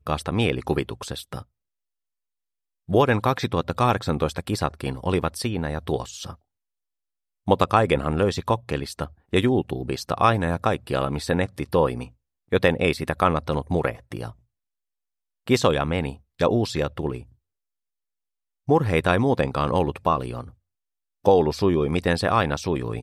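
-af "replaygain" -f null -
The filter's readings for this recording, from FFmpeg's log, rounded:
track_gain = +3.6 dB
track_peak = 0.535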